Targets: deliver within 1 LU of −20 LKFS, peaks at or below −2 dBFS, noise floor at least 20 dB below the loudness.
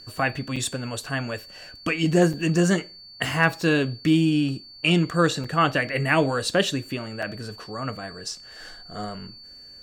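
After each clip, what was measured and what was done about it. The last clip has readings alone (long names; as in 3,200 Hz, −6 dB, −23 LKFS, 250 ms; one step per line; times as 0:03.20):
number of dropouts 4; longest dropout 4.9 ms; interfering tone 4,500 Hz; level of the tone −43 dBFS; integrated loudness −24.0 LKFS; sample peak −5.0 dBFS; target loudness −20.0 LKFS
→ repair the gap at 0:00.56/0:02.33/0:05.44/0:07.22, 4.9 ms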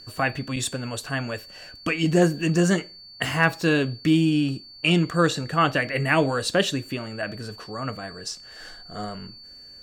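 number of dropouts 0; interfering tone 4,500 Hz; level of the tone −43 dBFS
→ notch filter 4,500 Hz, Q 30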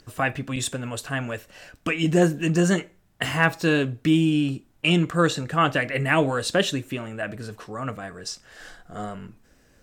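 interfering tone none found; integrated loudness −24.0 LKFS; sample peak −5.0 dBFS; target loudness −20.0 LKFS
→ level +4 dB
brickwall limiter −2 dBFS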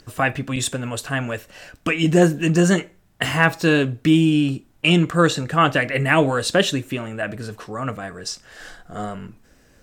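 integrated loudness −20.0 LKFS; sample peak −2.0 dBFS; background noise floor −56 dBFS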